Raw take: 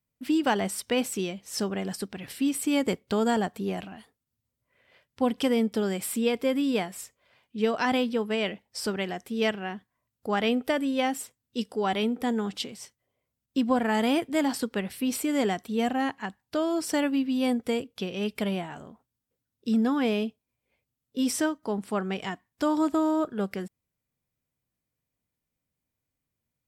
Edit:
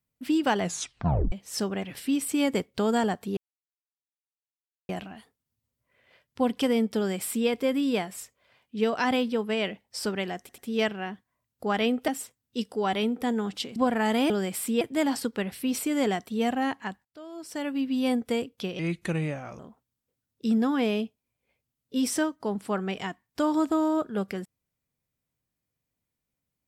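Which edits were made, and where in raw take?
0.61 s: tape stop 0.71 s
1.83–2.16 s: delete
3.70 s: insert silence 1.52 s
5.78–6.29 s: copy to 14.19 s
9.21 s: stutter 0.09 s, 3 plays
10.71–11.08 s: delete
12.76–13.65 s: delete
16.43–17.31 s: fade in quadratic, from -19.5 dB
18.17–18.82 s: speed 81%

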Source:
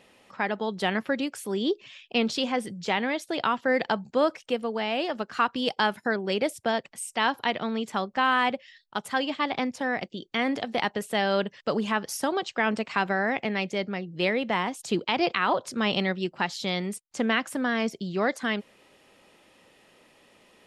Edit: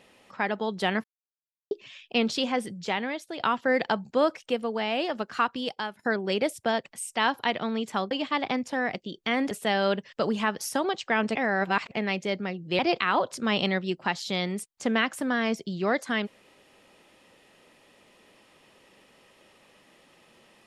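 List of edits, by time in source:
1.04–1.71 s: mute
2.60–3.40 s: fade out linear, to -7.5 dB
5.34–5.99 s: fade out, to -15 dB
8.11–9.19 s: delete
10.59–10.99 s: delete
12.83–13.39 s: reverse
14.27–15.13 s: delete

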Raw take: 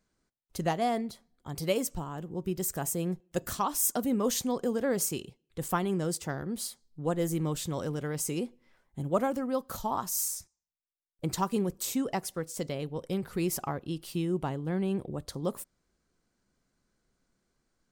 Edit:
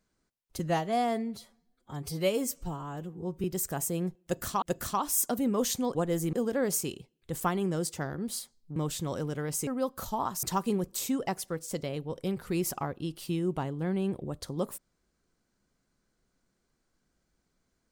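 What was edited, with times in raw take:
0.59–2.49 s: stretch 1.5×
3.28–3.67 s: loop, 2 plays
7.04–7.42 s: move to 4.61 s
8.33–9.39 s: delete
10.15–11.29 s: delete

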